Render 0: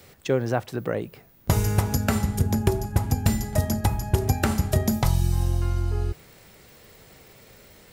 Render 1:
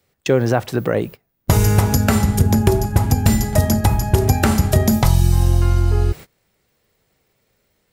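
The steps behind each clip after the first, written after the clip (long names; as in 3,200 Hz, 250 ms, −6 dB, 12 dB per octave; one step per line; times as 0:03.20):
noise gate −39 dBFS, range −25 dB
in parallel at +2 dB: brickwall limiter −16.5 dBFS, peak gain reduction 9 dB
on the sum: level +2.5 dB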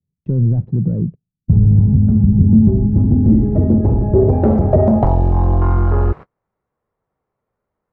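leveller curve on the samples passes 3
low-pass filter sweep 170 Hz → 1,100 Hz, 0:02.21–0:05.90
level −5.5 dB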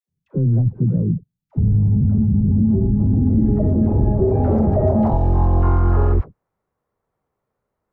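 brickwall limiter −10 dBFS, peak gain reduction 8.5 dB
all-pass dispersion lows, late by 87 ms, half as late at 540 Hz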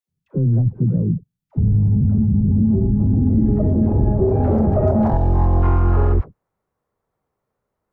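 stylus tracing distortion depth 0.064 ms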